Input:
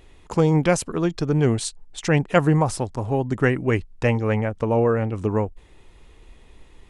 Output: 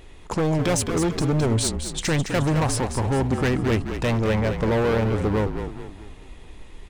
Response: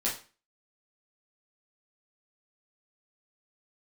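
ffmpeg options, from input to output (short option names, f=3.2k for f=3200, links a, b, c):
-filter_complex "[0:a]asplit=2[a][b];[b]alimiter=limit=-14.5dB:level=0:latency=1,volume=1.5dB[c];[a][c]amix=inputs=2:normalize=0,asoftclip=type=hard:threshold=-17dB,asplit=6[d][e][f][g][h][i];[e]adelay=213,afreqshift=-38,volume=-8dB[j];[f]adelay=426,afreqshift=-76,volume=-14.7dB[k];[g]adelay=639,afreqshift=-114,volume=-21.5dB[l];[h]adelay=852,afreqshift=-152,volume=-28.2dB[m];[i]adelay=1065,afreqshift=-190,volume=-35dB[n];[d][j][k][l][m][n]amix=inputs=6:normalize=0,volume=-2dB"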